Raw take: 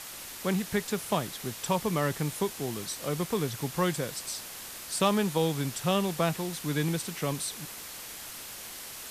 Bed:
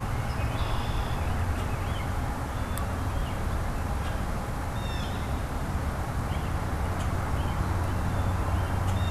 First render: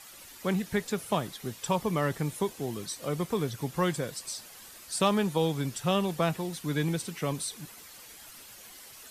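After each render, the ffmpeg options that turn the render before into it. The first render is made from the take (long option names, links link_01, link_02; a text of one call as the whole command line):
ffmpeg -i in.wav -af "afftdn=noise_reduction=10:noise_floor=-43" out.wav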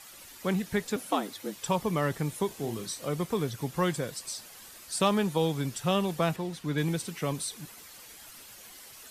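ffmpeg -i in.wav -filter_complex "[0:a]asettb=1/sr,asplit=3[link_01][link_02][link_03];[link_01]atrim=end=0.964[link_04];[link_02]atrim=start=0.96:end=1.56,asetpts=PTS-STARTPTS,afade=type=in:duration=0.004:curve=qsin,afade=type=out:start_time=0.596:duration=0.004:curve=qsin,afreqshift=93[link_05];[link_03]atrim=start=1.556[link_06];[link_04][link_05]acrossfade=duration=0.004:curve1=hsin:curve2=qsin[link_07];[link_07][link_06]acrossfade=duration=0.004:curve1=qsin:curve2=hsin,asettb=1/sr,asplit=3[link_08][link_09][link_10];[link_08]atrim=end=2.474[link_11];[link_09]atrim=start=2.47:end=3.03,asetpts=PTS-STARTPTS,afade=type=in:duration=0.004:curve=qsin,afade=type=out:start_time=0.556:duration=0.004:curve=qsin,asplit=2[link_12][link_13];[link_13]adelay=35,volume=-8dB[link_14];[link_12][link_14]amix=inputs=2:normalize=0,atrim=end_sample=24696[link_15];[link_10]atrim=start=3.026[link_16];[link_11][link_15]acrossfade=duration=0.004:curve1=hsin:curve2=qsin[link_17];[link_17][link_16]acrossfade=duration=0.004:curve1=qsin:curve2=hsin,asettb=1/sr,asplit=3[link_18][link_19][link_20];[link_18]atrim=end=6.364[link_21];[link_19]atrim=start=6.36:end=6.78,asetpts=PTS-STARTPTS,afade=type=in:duration=0.004:curve=qsin,afade=type=out:start_time=0.416:duration=0.004:curve=qsin,highshelf=frequency=6600:gain=-11[link_22];[link_20]atrim=start=6.776[link_23];[link_21][link_22]acrossfade=duration=0.004:curve1=hsin:curve2=qsin[link_24];[link_24][link_23]acrossfade=duration=0.004:curve1=qsin:curve2=hsin" out.wav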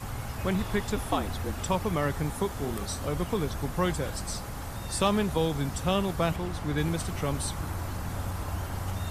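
ffmpeg -i in.wav -i bed.wav -filter_complex "[1:a]volume=-6dB[link_01];[0:a][link_01]amix=inputs=2:normalize=0" out.wav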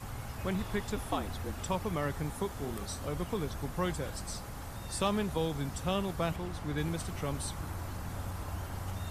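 ffmpeg -i in.wav -af "volume=-5.5dB" out.wav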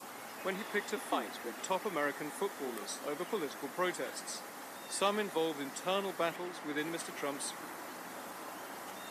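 ffmpeg -i in.wav -af "highpass=frequency=260:width=0.5412,highpass=frequency=260:width=1.3066,adynamicequalizer=threshold=0.00126:dfrequency=1900:dqfactor=3.7:tfrequency=1900:tqfactor=3.7:attack=5:release=100:ratio=0.375:range=3.5:mode=boostabove:tftype=bell" out.wav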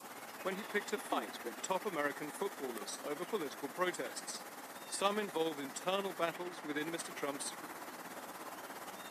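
ffmpeg -i in.wav -af "tremolo=f=17:d=0.5" out.wav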